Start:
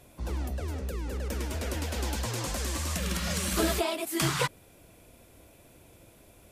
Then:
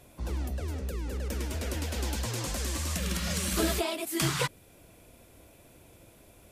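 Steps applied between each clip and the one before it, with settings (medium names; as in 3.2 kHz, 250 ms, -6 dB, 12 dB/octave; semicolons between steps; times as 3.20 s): dynamic bell 930 Hz, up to -3 dB, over -45 dBFS, Q 0.72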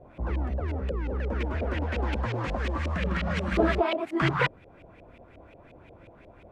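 LFO low-pass saw up 5.6 Hz 540–2700 Hz; trim +3.5 dB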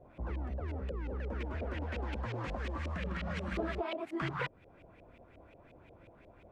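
compression 2.5:1, threshold -28 dBFS, peak gain reduction 7.5 dB; trim -6.5 dB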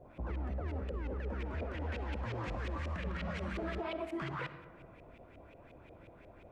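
peak limiter -32.5 dBFS, peak gain reduction 9 dB; on a send at -11 dB: reverberation RT60 1.7 s, pre-delay 20 ms; on the sum: trim +1.5 dB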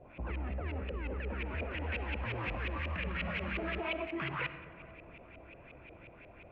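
resonant low-pass 2.6 kHz, resonance Q 3.8; filtered feedback delay 447 ms, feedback 75%, low-pass 2 kHz, level -21.5 dB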